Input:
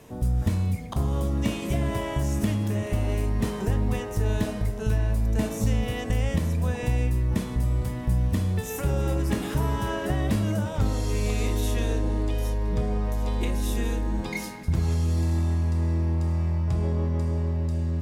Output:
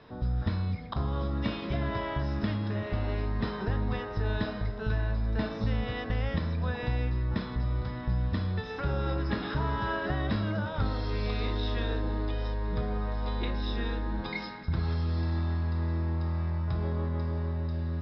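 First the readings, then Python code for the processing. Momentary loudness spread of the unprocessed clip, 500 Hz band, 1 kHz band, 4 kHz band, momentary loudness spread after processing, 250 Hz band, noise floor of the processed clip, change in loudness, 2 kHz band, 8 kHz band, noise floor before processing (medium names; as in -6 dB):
3 LU, -4.5 dB, -1.0 dB, -1.5 dB, 3 LU, -5.0 dB, -38 dBFS, -5.0 dB, 0.0 dB, under -30 dB, -34 dBFS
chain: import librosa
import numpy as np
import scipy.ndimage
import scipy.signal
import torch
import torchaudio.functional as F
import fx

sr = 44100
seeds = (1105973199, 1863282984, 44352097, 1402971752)

y = scipy.signal.sosfilt(scipy.signal.cheby1(6, 9, 5300.0, 'lowpass', fs=sr, output='sos'), x)
y = y * librosa.db_to_amplitude(3.5)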